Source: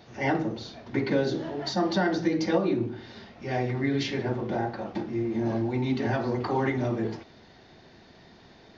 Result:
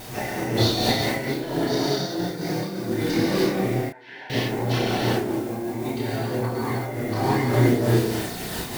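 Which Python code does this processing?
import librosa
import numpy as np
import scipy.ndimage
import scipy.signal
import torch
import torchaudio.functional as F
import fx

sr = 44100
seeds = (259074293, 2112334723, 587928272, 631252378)

p1 = fx.quant_dither(x, sr, seeds[0], bits=8, dither='triangular')
p2 = x + (p1 * librosa.db_to_amplitude(-5.0))
p3 = fx.vibrato(p2, sr, rate_hz=2.9, depth_cents=47.0)
p4 = p3 + fx.echo_single(p3, sr, ms=688, db=-8.5, dry=0)
p5 = fx.over_compress(p4, sr, threshold_db=-33.0, ratio=-1.0)
p6 = fx.rev_gated(p5, sr, seeds[1], gate_ms=400, shape='flat', drr_db=-5.0)
p7 = fx.dmg_noise_colour(p6, sr, seeds[2], colour='blue', level_db=-48.0)
p8 = fx.double_bandpass(p7, sr, hz=1200.0, octaves=0.74, at=(3.89, 4.3))
p9 = fx.chorus_voices(p8, sr, voices=2, hz=0.31, base_ms=30, depth_ms=4.1, mix_pct=45)
p10 = fx.am_noise(p9, sr, seeds[3], hz=5.7, depth_pct=65)
y = p10 * librosa.db_to_amplitude(8.0)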